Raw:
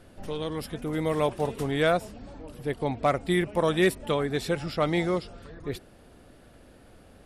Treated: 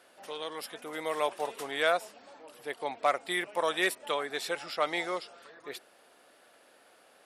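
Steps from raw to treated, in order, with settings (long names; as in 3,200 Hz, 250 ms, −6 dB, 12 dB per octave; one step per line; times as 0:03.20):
high-pass filter 670 Hz 12 dB per octave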